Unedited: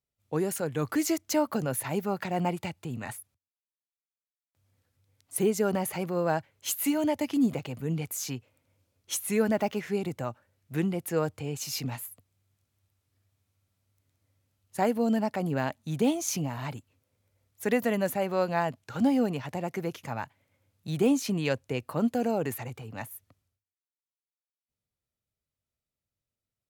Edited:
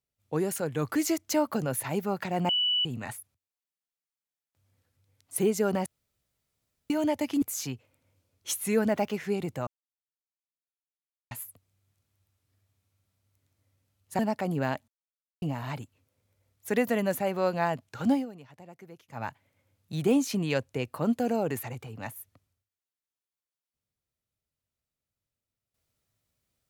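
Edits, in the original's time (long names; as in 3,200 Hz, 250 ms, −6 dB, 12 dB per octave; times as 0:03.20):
0:02.49–0:02.85: beep over 2,960 Hz −23 dBFS
0:05.86–0:06.90: fill with room tone
0:07.42–0:08.05: remove
0:10.30–0:11.94: silence
0:14.82–0:15.14: remove
0:15.83–0:16.37: silence
0:19.08–0:20.18: duck −16 dB, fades 0.13 s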